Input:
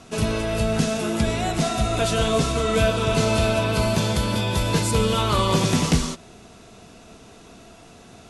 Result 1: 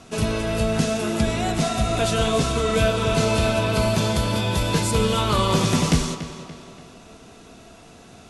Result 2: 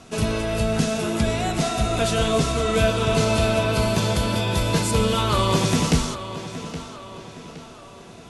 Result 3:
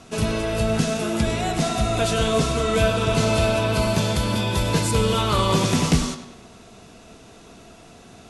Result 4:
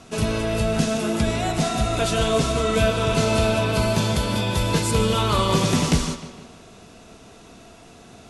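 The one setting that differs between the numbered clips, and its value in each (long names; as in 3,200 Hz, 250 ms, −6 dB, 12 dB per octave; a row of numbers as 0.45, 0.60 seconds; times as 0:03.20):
tape delay, delay time: 286, 817, 101, 153 milliseconds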